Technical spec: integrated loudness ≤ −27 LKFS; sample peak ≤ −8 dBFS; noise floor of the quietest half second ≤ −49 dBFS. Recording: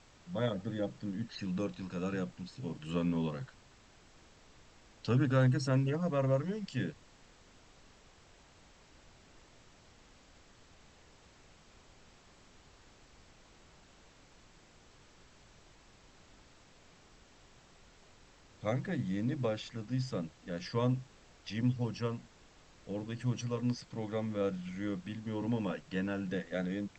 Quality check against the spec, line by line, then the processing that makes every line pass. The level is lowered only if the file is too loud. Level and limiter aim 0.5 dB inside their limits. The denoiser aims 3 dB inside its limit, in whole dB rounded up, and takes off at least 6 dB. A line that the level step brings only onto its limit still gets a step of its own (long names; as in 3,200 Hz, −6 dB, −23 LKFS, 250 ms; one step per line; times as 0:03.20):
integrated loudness −35.5 LKFS: in spec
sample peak −16.5 dBFS: in spec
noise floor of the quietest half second −61 dBFS: in spec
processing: no processing needed